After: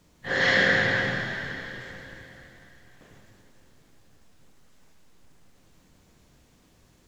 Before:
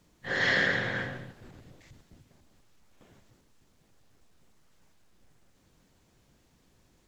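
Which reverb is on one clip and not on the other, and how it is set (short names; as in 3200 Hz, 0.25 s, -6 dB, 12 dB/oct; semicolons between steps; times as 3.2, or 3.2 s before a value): plate-style reverb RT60 3.5 s, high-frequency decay 1×, DRR 1.5 dB; gain +3.5 dB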